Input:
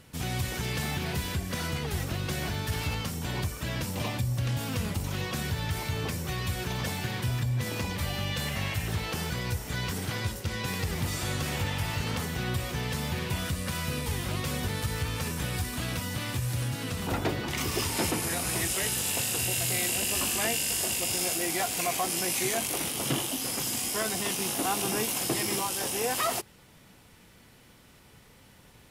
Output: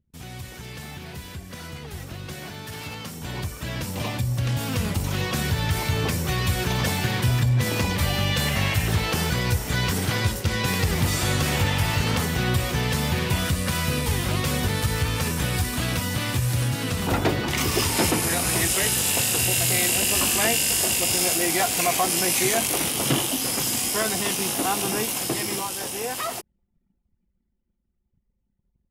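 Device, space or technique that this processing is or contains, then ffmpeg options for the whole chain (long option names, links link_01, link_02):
voice memo with heavy noise removal: -filter_complex "[0:a]asettb=1/sr,asplit=3[link_01][link_02][link_03];[link_01]atrim=end=2.344[link_04];[link_02]atrim=start=2.34:end=3.22,asetpts=PTS-STARTPTS,afade=type=in:duration=0.004:curve=qsin,afade=type=out:start_time=0.876:duration=0.004:curve=qsin,highpass=130[link_05];[link_03]atrim=start=3.216[link_06];[link_04][link_05]acrossfade=duration=0.004:curve1=hsin:curve2=qsin[link_07];[link_07][link_06]acrossfade=duration=0.004:curve1=qsin:curve2=hsin,anlmdn=0.0398,dynaudnorm=framelen=270:gausssize=31:maxgain=16.5dB,volume=-6.5dB"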